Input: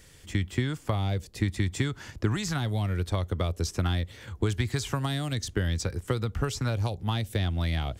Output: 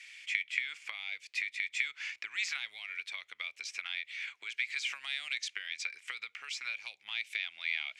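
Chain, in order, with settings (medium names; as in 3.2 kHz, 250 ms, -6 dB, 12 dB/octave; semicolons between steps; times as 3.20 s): low-pass 6.1 kHz 12 dB/octave; compression 4:1, threshold -32 dBFS, peak gain reduction 10.5 dB; resonant high-pass 2.3 kHz, resonance Q 8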